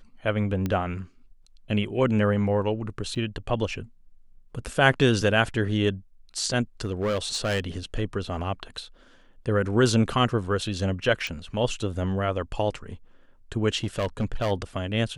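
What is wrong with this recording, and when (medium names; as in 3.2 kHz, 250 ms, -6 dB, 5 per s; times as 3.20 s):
0.66 s: pop -15 dBFS
3.15–3.16 s: dropout 7.5 ms
6.85–7.64 s: clipped -21.5 dBFS
11.27 s: pop
13.77–14.52 s: clipped -21 dBFS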